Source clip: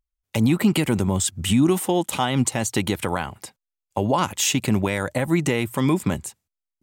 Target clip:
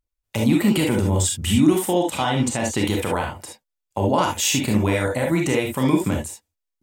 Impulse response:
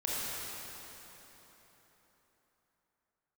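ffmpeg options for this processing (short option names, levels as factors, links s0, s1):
-filter_complex "[0:a]asettb=1/sr,asplit=3[s0][s1][s2];[s0]atrim=end=1.944[s3];[s1]atrim=start=1.94:end=2.81,asetpts=PTS-STARTPTS,afade=t=in:d=0.004:c=qsin,afade=t=out:st=0.866:d=0.004:c=qsin,highshelf=f=9800:g=-10[s4];[s2]atrim=start=2.806[s5];[s3][s4]acrossfade=d=0.004:c1=hsin:c2=qsin[s6];[s6][s5]acrossfade=d=0.004:c1=qsin:c2=hsin[s7];[1:a]atrim=start_sample=2205,atrim=end_sample=3528[s8];[s7][s8]afir=irnorm=-1:irlink=0"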